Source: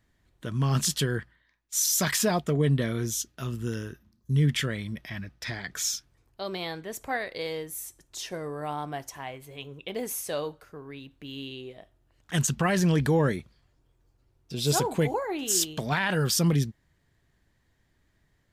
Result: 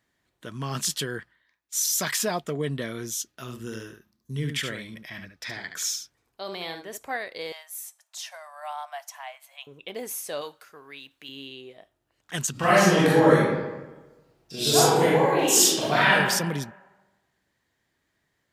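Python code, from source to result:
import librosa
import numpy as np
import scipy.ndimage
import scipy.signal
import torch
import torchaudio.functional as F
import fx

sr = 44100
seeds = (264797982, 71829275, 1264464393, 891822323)

y = fx.echo_single(x, sr, ms=72, db=-7.0, at=(3.46, 6.96), fade=0.02)
y = fx.steep_highpass(y, sr, hz=600.0, slope=96, at=(7.52, 9.67))
y = fx.tilt_shelf(y, sr, db=-7.0, hz=790.0, at=(10.41, 11.29))
y = fx.reverb_throw(y, sr, start_s=12.51, length_s=3.62, rt60_s=1.2, drr_db=-9.5)
y = fx.highpass(y, sr, hz=350.0, slope=6)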